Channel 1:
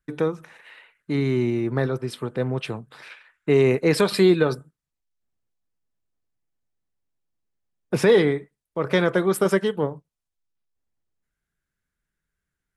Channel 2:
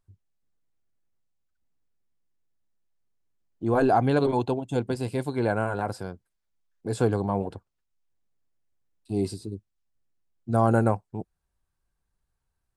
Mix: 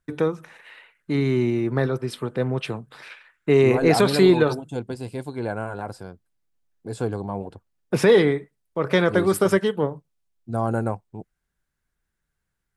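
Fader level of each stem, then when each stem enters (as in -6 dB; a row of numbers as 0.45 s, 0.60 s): +1.0 dB, -3.0 dB; 0.00 s, 0.00 s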